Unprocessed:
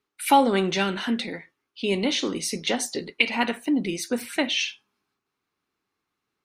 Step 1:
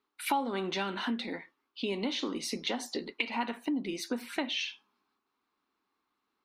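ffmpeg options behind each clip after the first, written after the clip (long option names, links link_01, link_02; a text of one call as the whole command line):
ffmpeg -i in.wav -af "equalizer=frequency=125:width_type=o:width=1:gain=-11,equalizer=frequency=250:width_type=o:width=1:gain=8,equalizer=frequency=1000:width_type=o:width=1:gain=9,equalizer=frequency=4000:width_type=o:width=1:gain=5,equalizer=frequency=8000:width_type=o:width=1:gain=-7,acompressor=threshold=-27dB:ratio=3,equalizer=frequency=7400:width=7.1:gain=3.5,volume=-5dB" out.wav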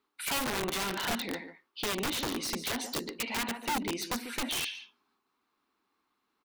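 ffmpeg -i in.wav -af "asoftclip=type=tanh:threshold=-27dB,aecho=1:1:143:0.266,aeval=exprs='(mod(29.9*val(0)+1,2)-1)/29.9':channel_layout=same,volume=2.5dB" out.wav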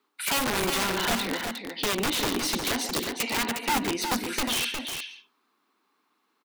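ffmpeg -i in.wav -filter_complex "[0:a]acrossover=split=150|770|7900[link_01][link_02][link_03][link_04];[link_01]acrusher=bits=7:mix=0:aa=0.000001[link_05];[link_05][link_02][link_03][link_04]amix=inputs=4:normalize=0,aecho=1:1:359:0.473,volume=5.5dB" out.wav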